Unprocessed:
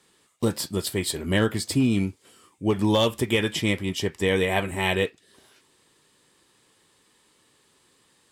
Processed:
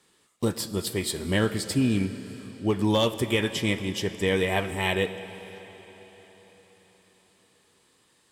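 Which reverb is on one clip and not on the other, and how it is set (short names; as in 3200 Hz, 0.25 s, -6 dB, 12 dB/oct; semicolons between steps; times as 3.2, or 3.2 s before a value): digital reverb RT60 4.6 s, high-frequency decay 0.95×, pre-delay 10 ms, DRR 11.5 dB; gain -2 dB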